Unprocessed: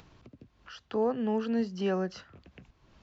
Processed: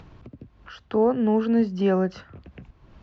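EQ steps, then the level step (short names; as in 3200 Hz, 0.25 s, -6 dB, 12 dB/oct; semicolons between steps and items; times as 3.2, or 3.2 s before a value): LPF 2000 Hz 6 dB/oct; low shelf 140 Hz +5 dB; +7.5 dB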